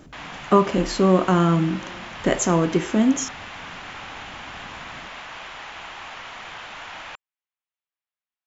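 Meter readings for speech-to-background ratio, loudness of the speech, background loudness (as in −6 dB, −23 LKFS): 15.5 dB, −20.5 LKFS, −36.0 LKFS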